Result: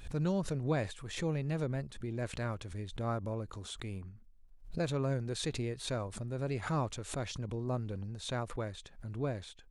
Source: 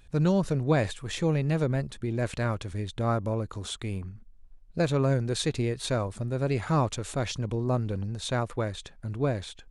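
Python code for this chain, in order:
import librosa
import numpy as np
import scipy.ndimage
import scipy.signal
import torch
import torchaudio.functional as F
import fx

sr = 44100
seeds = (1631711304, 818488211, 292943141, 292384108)

y = fx.pre_swell(x, sr, db_per_s=120.0)
y = F.gain(torch.from_numpy(y), -8.5).numpy()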